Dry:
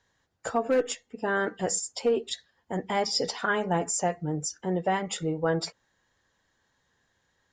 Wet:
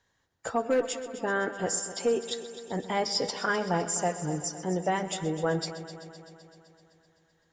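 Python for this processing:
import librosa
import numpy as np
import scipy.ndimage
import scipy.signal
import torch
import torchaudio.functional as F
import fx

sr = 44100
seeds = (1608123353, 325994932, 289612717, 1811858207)

y = fx.echo_heads(x, sr, ms=128, heads='first and second', feedback_pct=64, wet_db=-16)
y = y * librosa.db_to_amplitude(-1.5)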